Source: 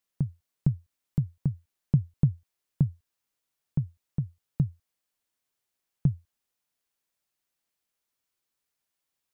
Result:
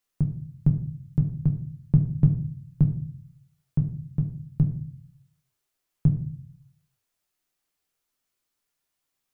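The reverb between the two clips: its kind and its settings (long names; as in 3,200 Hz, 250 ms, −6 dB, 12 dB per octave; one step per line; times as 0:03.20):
rectangular room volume 47 cubic metres, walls mixed, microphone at 0.43 metres
level +1.5 dB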